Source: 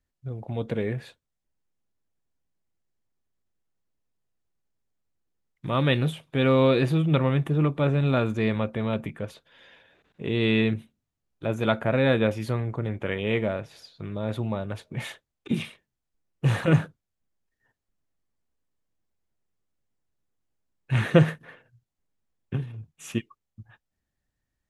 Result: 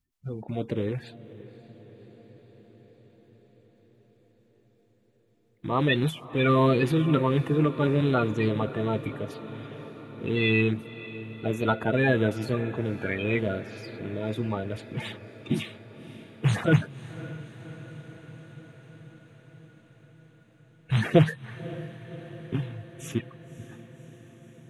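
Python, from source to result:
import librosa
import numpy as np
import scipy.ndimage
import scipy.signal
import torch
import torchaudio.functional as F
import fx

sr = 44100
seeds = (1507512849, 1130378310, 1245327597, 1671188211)

y = fx.spec_quant(x, sr, step_db=30)
y = fx.notch(y, sr, hz=550.0, q=12.0)
y = fx.echo_diffused(y, sr, ms=559, feedback_pct=70, wet_db=-16.0)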